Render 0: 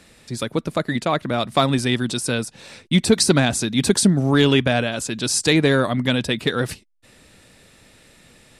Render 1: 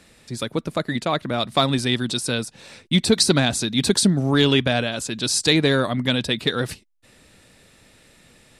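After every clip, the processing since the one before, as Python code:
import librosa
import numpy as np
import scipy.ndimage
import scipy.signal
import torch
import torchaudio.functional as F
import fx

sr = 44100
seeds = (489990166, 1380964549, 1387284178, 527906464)

y = fx.dynamic_eq(x, sr, hz=4000.0, q=2.3, threshold_db=-37.0, ratio=4.0, max_db=6)
y = y * librosa.db_to_amplitude(-2.0)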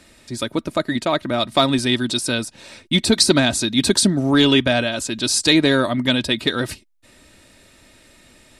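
y = x + 0.42 * np.pad(x, (int(3.2 * sr / 1000.0), 0))[:len(x)]
y = y * librosa.db_to_amplitude(2.0)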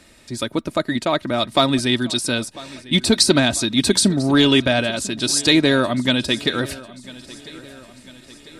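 y = fx.echo_feedback(x, sr, ms=997, feedback_pct=53, wet_db=-20.0)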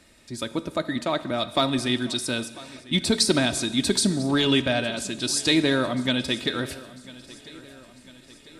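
y = fx.rev_plate(x, sr, seeds[0], rt60_s=1.3, hf_ratio=0.95, predelay_ms=0, drr_db=12.5)
y = y * librosa.db_to_amplitude(-6.0)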